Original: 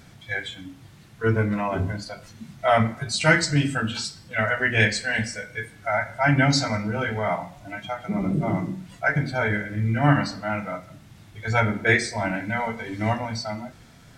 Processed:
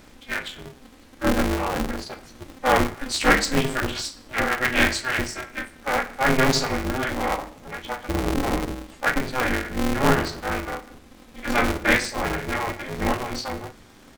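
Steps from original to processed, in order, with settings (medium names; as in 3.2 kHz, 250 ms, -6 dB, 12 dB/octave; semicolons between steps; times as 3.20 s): doubling 38 ms -13 dB; polarity switched at an audio rate 130 Hz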